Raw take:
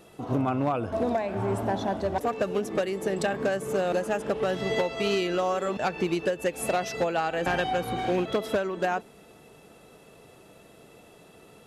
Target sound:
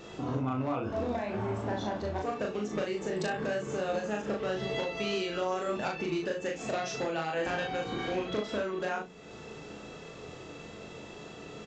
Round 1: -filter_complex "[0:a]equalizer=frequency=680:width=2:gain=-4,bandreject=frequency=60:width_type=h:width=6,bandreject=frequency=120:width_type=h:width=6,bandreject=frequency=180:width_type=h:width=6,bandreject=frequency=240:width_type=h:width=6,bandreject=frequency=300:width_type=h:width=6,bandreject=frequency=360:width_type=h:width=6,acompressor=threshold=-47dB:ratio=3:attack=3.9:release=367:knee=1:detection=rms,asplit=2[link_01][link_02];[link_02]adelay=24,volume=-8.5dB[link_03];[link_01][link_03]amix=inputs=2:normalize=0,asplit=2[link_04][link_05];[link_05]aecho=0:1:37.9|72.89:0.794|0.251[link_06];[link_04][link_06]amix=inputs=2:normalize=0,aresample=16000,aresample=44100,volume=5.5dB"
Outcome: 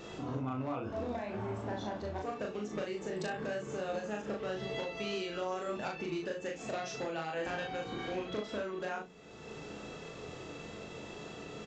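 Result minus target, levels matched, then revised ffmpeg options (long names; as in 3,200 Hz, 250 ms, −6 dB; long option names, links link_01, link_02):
downward compressor: peak gain reduction +5 dB
-filter_complex "[0:a]equalizer=frequency=680:width=2:gain=-4,bandreject=frequency=60:width_type=h:width=6,bandreject=frequency=120:width_type=h:width=6,bandreject=frequency=180:width_type=h:width=6,bandreject=frequency=240:width_type=h:width=6,bandreject=frequency=300:width_type=h:width=6,bandreject=frequency=360:width_type=h:width=6,acompressor=threshold=-39.5dB:ratio=3:attack=3.9:release=367:knee=1:detection=rms,asplit=2[link_01][link_02];[link_02]adelay=24,volume=-8.5dB[link_03];[link_01][link_03]amix=inputs=2:normalize=0,asplit=2[link_04][link_05];[link_05]aecho=0:1:37.9|72.89:0.794|0.251[link_06];[link_04][link_06]amix=inputs=2:normalize=0,aresample=16000,aresample=44100,volume=5.5dB"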